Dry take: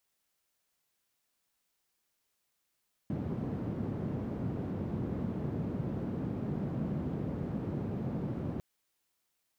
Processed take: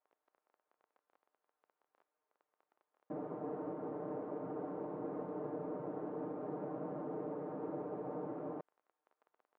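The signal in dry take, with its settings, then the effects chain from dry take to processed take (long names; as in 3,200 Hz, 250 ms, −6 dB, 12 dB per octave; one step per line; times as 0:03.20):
band-limited noise 120–190 Hz, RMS −35.5 dBFS 5.50 s
comb filter 6.6 ms, depth 94%
surface crackle 18 per second −42 dBFS
flat-topped band-pass 680 Hz, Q 0.78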